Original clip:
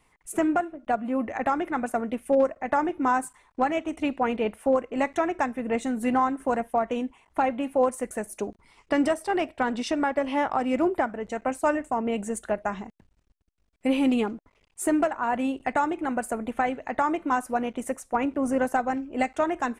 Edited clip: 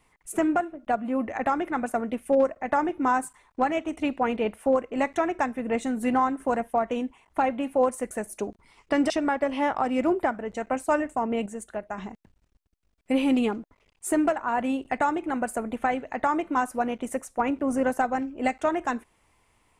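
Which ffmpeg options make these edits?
ffmpeg -i in.wav -filter_complex "[0:a]asplit=4[link_01][link_02][link_03][link_04];[link_01]atrim=end=9.102[link_05];[link_02]atrim=start=9.848:end=12.212[link_06];[link_03]atrim=start=12.208:end=12.732,asetpts=PTS-STARTPTS,volume=-6dB[link_07];[link_04]atrim=start=12.728[link_08];[link_05][link_06]acrossfade=duration=0.004:curve1=hsin:curve2=hsin[link_09];[link_09][link_07]acrossfade=duration=0.004:curve1=hsin:curve2=hsin[link_10];[link_10][link_08]acrossfade=duration=0.004:curve1=hsin:curve2=hsin" out.wav

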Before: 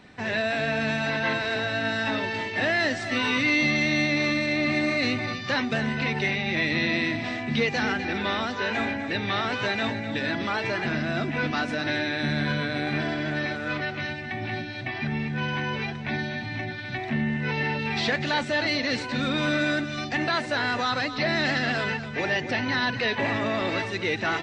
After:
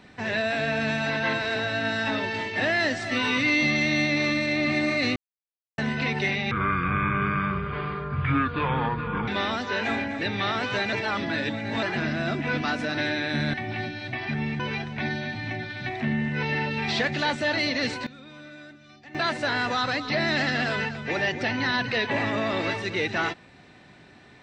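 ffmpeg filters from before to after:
ffmpeg -i in.wav -filter_complex "[0:a]asplit=11[link_01][link_02][link_03][link_04][link_05][link_06][link_07][link_08][link_09][link_10][link_11];[link_01]atrim=end=5.16,asetpts=PTS-STARTPTS,afade=type=out:start_time=5.156:duration=0.004:curve=hsin[link_12];[link_02]atrim=start=5.16:end=5.78,asetpts=PTS-STARTPTS,volume=0[link_13];[link_03]atrim=start=5.78:end=6.514,asetpts=PTS-STARTPTS,afade=type=in:duration=0.004:curve=hsin[link_14];[link_04]atrim=start=6.51:end=8.17,asetpts=PTS-STARTPTS,asetrate=26460,aresample=44100[link_15];[link_05]atrim=start=8.166:end=9.822[link_16];[link_06]atrim=start=9.818:end=10.722,asetpts=PTS-STARTPTS,areverse[link_17];[link_07]atrim=start=10.718:end=12.432[link_18];[link_08]atrim=start=14.268:end=15.332[link_19];[link_09]atrim=start=15.678:end=19.15,asetpts=PTS-STARTPTS,afade=type=out:start_time=3.292:duration=0.18:curve=log:silence=0.1[link_20];[link_10]atrim=start=19.15:end=20.23,asetpts=PTS-STARTPTS,volume=-20dB[link_21];[link_11]atrim=start=20.23,asetpts=PTS-STARTPTS,afade=type=in:duration=0.18:curve=log:silence=0.1[link_22];[link_12][link_13][link_14]concat=n=3:v=0:a=1[link_23];[link_23][link_15]acrossfade=duration=0.004:curve1=hsin:curve2=hsin[link_24];[link_24][link_16]acrossfade=duration=0.004:curve1=hsin:curve2=hsin[link_25];[link_25][link_17]acrossfade=duration=0.004:curve1=hsin:curve2=hsin[link_26];[link_26][link_18]acrossfade=duration=0.004:curve1=hsin:curve2=hsin[link_27];[link_27][link_19]acrossfade=duration=0.004:curve1=hsin:curve2=hsin[link_28];[link_20][link_21][link_22]concat=n=3:v=0:a=1[link_29];[link_28][link_29]acrossfade=duration=0.004:curve1=hsin:curve2=hsin" out.wav

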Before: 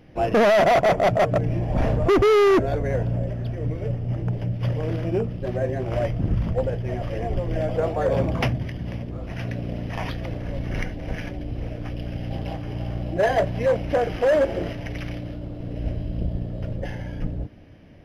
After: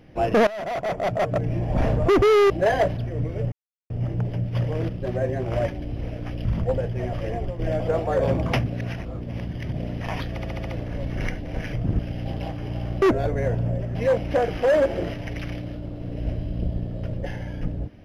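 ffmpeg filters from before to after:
ffmpeg -i in.wav -filter_complex "[0:a]asplit=20[link_01][link_02][link_03][link_04][link_05][link_06][link_07][link_08][link_09][link_10][link_11][link_12][link_13][link_14][link_15][link_16][link_17][link_18][link_19][link_20];[link_01]atrim=end=0.47,asetpts=PTS-STARTPTS,afade=type=out:start_time=0.466:duration=0.004:curve=hsin:silence=0.1[link_21];[link_02]atrim=start=0.47:end=2.502,asetpts=PTS-STARTPTS,afade=type=in:duration=1.24:silence=0.1[link_22];[link_03]atrim=start=13.068:end=13.542[link_23];[link_04]atrim=start=3.428:end=3.98,asetpts=PTS-STARTPTS,afade=type=out:start_time=0.548:duration=0.004:curve=hsin,apad=pad_dur=0.38[link_24];[link_05]atrim=start=3.98:end=4.972,asetpts=PTS-STARTPTS,afade=type=in:duration=0.004:curve=hsin[link_25];[link_06]atrim=start=5.288:end=6.082[link_26];[link_07]atrim=start=11.268:end=12.042[link_27];[link_08]atrim=start=6.338:end=7.48,asetpts=PTS-STARTPTS,afade=type=out:start_time=0.852:duration=0.29:silence=0.398107[link_28];[link_09]atrim=start=7.48:end=8.552,asetpts=PTS-STARTPTS,afade=type=in:duration=0.004:curve=hsin:silence=0.398107[link_29];[link_10]atrim=start=8.548:end=9.662,asetpts=PTS-STARTPTS,areverse[link_30];[link_11]atrim=start=9.658:end=10.272[link_31];[link_12]atrim=start=10.198:end=10.272[link_32];[link_13]atrim=start=10.198:end=10.272[link_33];[link_14]atrim=start=10.198:end=10.272[link_34];[link_15]atrim=start=10.198:end=10.272[link_35];[link_16]atrim=start=10.198:end=11.272[link_36];[link_17]atrim=start=6.078:end=6.342[link_37];[link_18]atrim=start=12.038:end=13.072[link_38];[link_19]atrim=start=2.498:end=3.432[link_39];[link_20]atrim=start=13.538[link_40];[link_21][link_22]concat=n=2:v=0:a=1[link_41];[link_41][link_23]acrossfade=duration=0.004:curve1=hsin:curve2=hsin[link_42];[link_24][link_25]concat=n=2:v=0:a=1[link_43];[link_42][link_43]acrossfade=duration=0.004:curve1=hsin:curve2=hsin[link_44];[link_44][link_26]acrossfade=duration=0.004:curve1=hsin:curve2=hsin[link_45];[link_45][link_27]acrossfade=duration=0.004:curve1=hsin:curve2=hsin[link_46];[link_28][link_29]concat=n=2:v=0:a=1[link_47];[link_46][link_47]acrossfade=duration=0.004:curve1=hsin:curve2=hsin[link_48];[link_48][link_30]acrossfade=duration=0.004:curve1=hsin:curve2=hsin[link_49];[link_49][link_31]acrossfade=duration=0.004:curve1=hsin:curve2=hsin[link_50];[link_50][link_32]acrossfade=duration=0.004:curve1=hsin:curve2=hsin[link_51];[link_51][link_33]acrossfade=duration=0.004:curve1=hsin:curve2=hsin[link_52];[link_52][link_34]acrossfade=duration=0.004:curve1=hsin:curve2=hsin[link_53];[link_53][link_35]acrossfade=duration=0.004:curve1=hsin:curve2=hsin[link_54];[link_54][link_36]acrossfade=duration=0.004:curve1=hsin:curve2=hsin[link_55];[link_55][link_37]acrossfade=duration=0.004:curve1=hsin:curve2=hsin[link_56];[link_56][link_38]acrossfade=duration=0.004:curve1=hsin:curve2=hsin[link_57];[link_57][link_39]acrossfade=duration=0.004:curve1=hsin:curve2=hsin[link_58];[link_58][link_40]acrossfade=duration=0.004:curve1=hsin:curve2=hsin" out.wav

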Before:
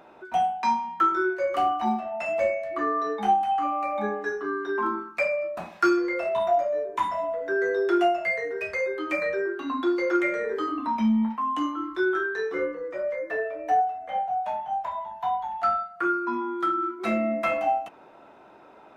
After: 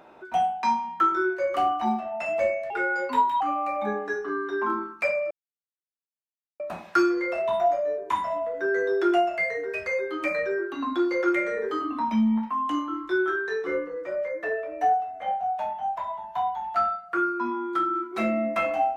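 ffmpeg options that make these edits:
ffmpeg -i in.wav -filter_complex "[0:a]asplit=4[link_01][link_02][link_03][link_04];[link_01]atrim=end=2.704[link_05];[link_02]atrim=start=2.7:end=3.57,asetpts=PTS-STARTPTS,asetrate=54243,aresample=44100[link_06];[link_03]atrim=start=3.566:end=5.47,asetpts=PTS-STARTPTS,afade=type=out:start_time=1.9:duration=0.004:curve=hsin,apad=pad_dur=1.29[link_07];[link_04]atrim=start=5.47,asetpts=PTS-STARTPTS,afade=type=in:duration=0.004:curve=hsin[link_08];[link_05][link_06]acrossfade=duration=0.004:curve1=hsin:curve2=hsin[link_09];[link_07][link_08]concat=n=2:v=0:a=1[link_10];[link_09][link_10]acrossfade=duration=0.004:curve1=hsin:curve2=hsin" out.wav

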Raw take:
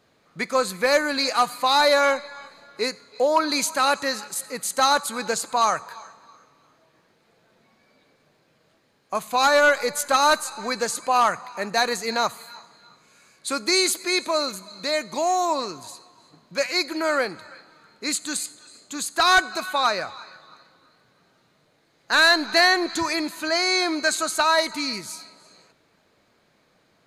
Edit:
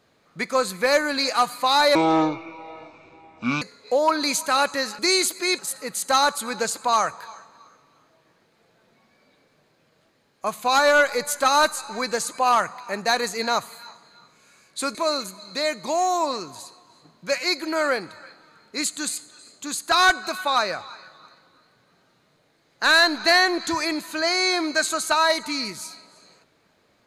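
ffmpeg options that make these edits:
ffmpeg -i in.wav -filter_complex "[0:a]asplit=6[link_01][link_02][link_03][link_04][link_05][link_06];[link_01]atrim=end=1.954[link_07];[link_02]atrim=start=1.95:end=2.9,asetpts=PTS-STARTPTS,asetrate=25137,aresample=44100[link_08];[link_03]atrim=start=2.896:end=4.272[link_09];[link_04]atrim=start=13.628:end=14.232[link_10];[link_05]atrim=start=4.268:end=13.632[link_11];[link_06]atrim=start=14.228[link_12];[link_07][link_08]acrossfade=duration=0.004:curve1=hsin:curve2=hsin[link_13];[link_13][link_09]acrossfade=duration=0.004:curve1=hsin:curve2=hsin[link_14];[link_14][link_10]acrossfade=duration=0.004:curve1=hsin:curve2=hsin[link_15];[link_15][link_11]acrossfade=duration=0.004:curve1=hsin:curve2=hsin[link_16];[link_16][link_12]acrossfade=duration=0.004:curve1=hsin:curve2=hsin" out.wav

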